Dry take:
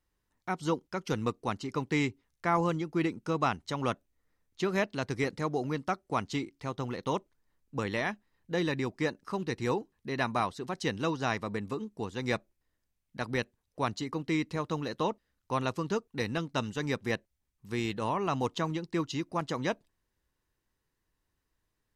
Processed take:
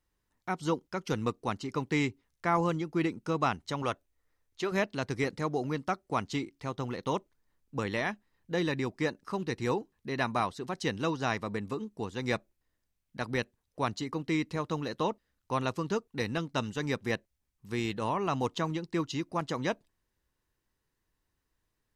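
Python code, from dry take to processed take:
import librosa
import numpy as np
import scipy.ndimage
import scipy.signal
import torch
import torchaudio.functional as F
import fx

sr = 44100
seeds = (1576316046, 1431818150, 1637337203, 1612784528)

y = fx.peak_eq(x, sr, hz=190.0, db=-9.0, octaves=1.0, at=(3.82, 4.72))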